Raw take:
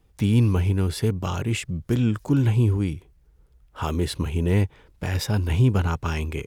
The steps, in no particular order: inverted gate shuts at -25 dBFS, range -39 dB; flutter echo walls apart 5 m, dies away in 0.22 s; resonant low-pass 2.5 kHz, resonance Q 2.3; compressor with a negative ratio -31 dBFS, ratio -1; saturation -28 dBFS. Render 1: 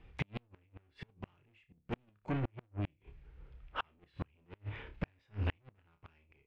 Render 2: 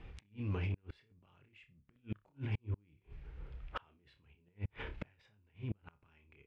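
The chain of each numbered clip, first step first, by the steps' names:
saturation > flutter echo > compressor with a negative ratio > resonant low-pass > inverted gate; compressor with a negative ratio > flutter echo > inverted gate > resonant low-pass > saturation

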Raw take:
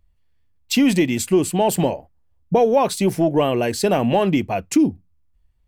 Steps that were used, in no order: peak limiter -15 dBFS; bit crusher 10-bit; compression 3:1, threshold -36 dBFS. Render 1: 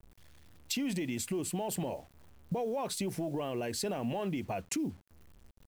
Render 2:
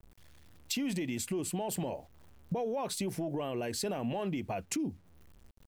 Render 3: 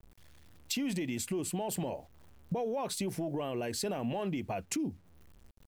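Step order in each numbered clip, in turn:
peak limiter > compression > bit crusher; bit crusher > peak limiter > compression; peak limiter > bit crusher > compression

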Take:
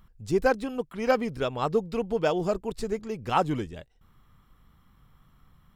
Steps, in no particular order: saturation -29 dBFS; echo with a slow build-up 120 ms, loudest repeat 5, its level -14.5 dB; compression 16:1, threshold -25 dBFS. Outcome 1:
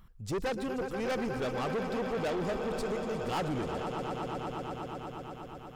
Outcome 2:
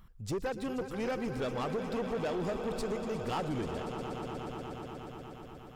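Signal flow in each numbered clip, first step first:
echo with a slow build-up > saturation > compression; compression > echo with a slow build-up > saturation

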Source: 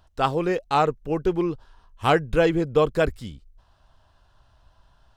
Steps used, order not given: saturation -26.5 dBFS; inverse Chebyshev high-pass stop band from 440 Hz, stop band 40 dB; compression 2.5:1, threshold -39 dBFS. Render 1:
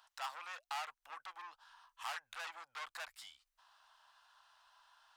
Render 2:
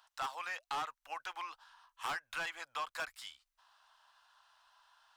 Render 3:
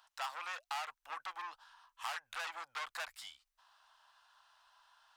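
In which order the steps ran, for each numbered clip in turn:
saturation > compression > inverse Chebyshev high-pass; inverse Chebyshev high-pass > saturation > compression; saturation > inverse Chebyshev high-pass > compression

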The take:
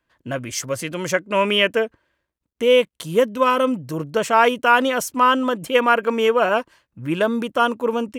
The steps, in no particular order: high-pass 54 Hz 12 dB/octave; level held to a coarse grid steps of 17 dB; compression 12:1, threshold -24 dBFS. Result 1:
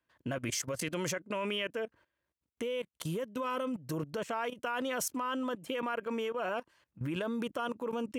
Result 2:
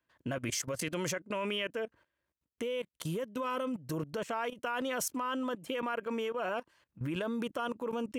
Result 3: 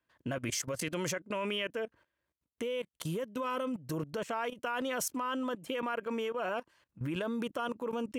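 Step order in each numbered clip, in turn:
compression > level held to a coarse grid > high-pass; high-pass > compression > level held to a coarse grid; compression > high-pass > level held to a coarse grid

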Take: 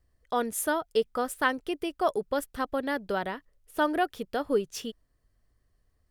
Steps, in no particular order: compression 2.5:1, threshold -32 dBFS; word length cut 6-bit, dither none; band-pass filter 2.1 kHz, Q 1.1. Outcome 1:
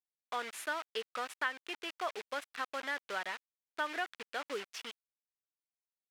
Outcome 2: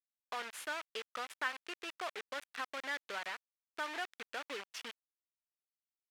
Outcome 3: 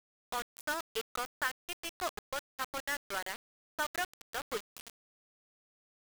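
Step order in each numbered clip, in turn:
word length cut > band-pass filter > compression; compression > word length cut > band-pass filter; band-pass filter > compression > word length cut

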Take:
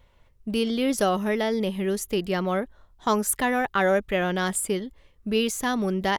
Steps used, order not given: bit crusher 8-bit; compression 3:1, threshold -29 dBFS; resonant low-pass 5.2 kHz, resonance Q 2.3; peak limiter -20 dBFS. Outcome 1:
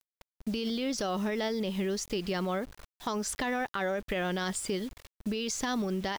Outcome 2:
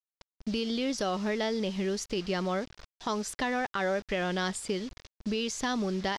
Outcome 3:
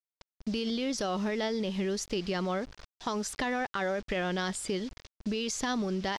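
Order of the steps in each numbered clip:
resonant low-pass > bit crusher > peak limiter > compression; compression > bit crusher > resonant low-pass > peak limiter; peak limiter > bit crusher > resonant low-pass > compression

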